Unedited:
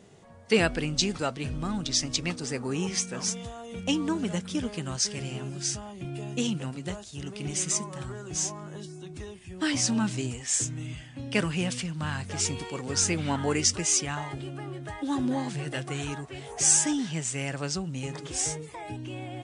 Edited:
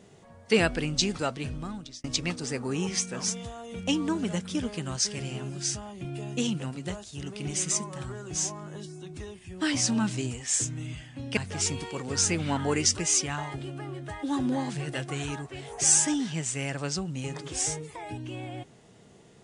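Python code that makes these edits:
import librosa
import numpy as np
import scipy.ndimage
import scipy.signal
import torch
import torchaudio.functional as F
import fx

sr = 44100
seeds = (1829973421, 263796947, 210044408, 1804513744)

y = fx.edit(x, sr, fx.fade_out_span(start_s=1.37, length_s=0.67),
    fx.cut(start_s=11.37, length_s=0.79), tone=tone)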